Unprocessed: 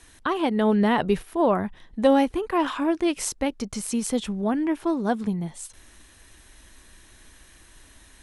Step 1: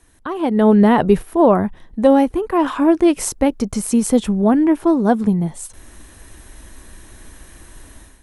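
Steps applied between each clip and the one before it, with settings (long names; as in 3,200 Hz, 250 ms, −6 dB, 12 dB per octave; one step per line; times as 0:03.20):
parametric band 3,600 Hz −9 dB 2.7 octaves
automatic gain control gain up to 12.5 dB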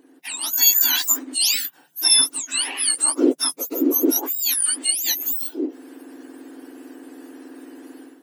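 frequency axis turned over on the octave scale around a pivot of 1,700 Hz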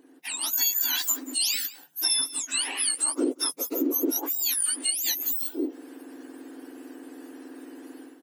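single-tap delay 182 ms −22 dB
downward compressor 4 to 1, threshold −20 dBFS, peak gain reduction 9 dB
level −2.5 dB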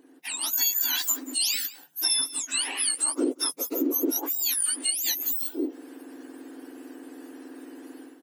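no processing that can be heard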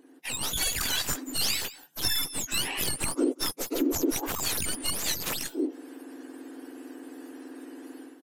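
stylus tracing distortion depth 0.12 ms
downsampling to 32,000 Hz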